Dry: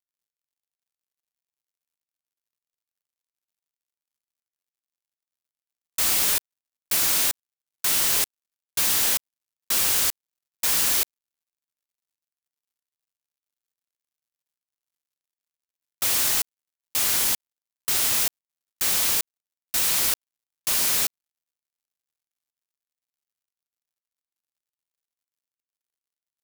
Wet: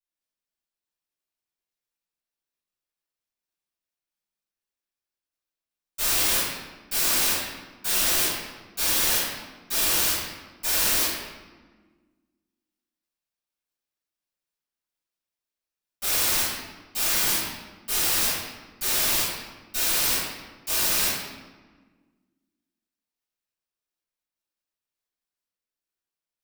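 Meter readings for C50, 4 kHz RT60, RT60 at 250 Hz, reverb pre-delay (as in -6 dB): -1.5 dB, 0.90 s, 2.2 s, 3 ms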